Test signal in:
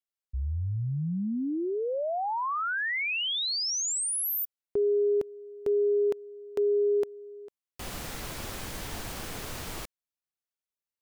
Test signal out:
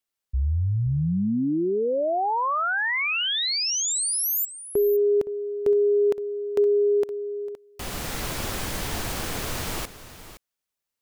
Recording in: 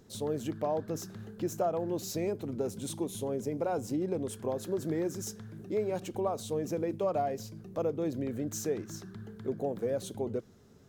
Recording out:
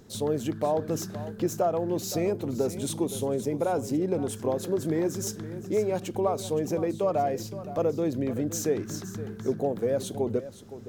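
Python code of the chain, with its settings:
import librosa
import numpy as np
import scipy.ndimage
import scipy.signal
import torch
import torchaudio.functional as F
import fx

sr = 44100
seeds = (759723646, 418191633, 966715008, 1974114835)

p1 = fx.rider(x, sr, range_db=4, speed_s=0.5)
p2 = x + (p1 * 10.0 ** (-1.0 / 20.0))
y = p2 + 10.0 ** (-14.0 / 20.0) * np.pad(p2, (int(517 * sr / 1000.0), 0))[:len(p2)]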